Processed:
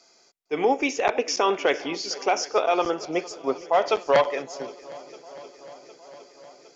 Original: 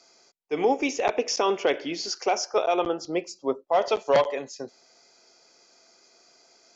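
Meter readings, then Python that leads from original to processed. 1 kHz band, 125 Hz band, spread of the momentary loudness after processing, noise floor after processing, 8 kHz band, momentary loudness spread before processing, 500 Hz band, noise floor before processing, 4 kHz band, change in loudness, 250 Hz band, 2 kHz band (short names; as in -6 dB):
+2.5 dB, 0.0 dB, 20 LU, -59 dBFS, n/a, 10 LU, +1.0 dB, -60 dBFS, +1.0 dB, +1.5 dB, +0.5 dB, +4.0 dB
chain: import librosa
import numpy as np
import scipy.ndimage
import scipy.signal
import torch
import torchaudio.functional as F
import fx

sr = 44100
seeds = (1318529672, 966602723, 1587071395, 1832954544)

y = fx.echo_swing(x, sr, ms=760, ratio=1.5, feedback_pct=63, wet_db=-19)
y = fx.dynamic_eq(y, sr, hz=1600.0, q=0.82, threshold_db=-37.0, ratio=4.0, max_db=5)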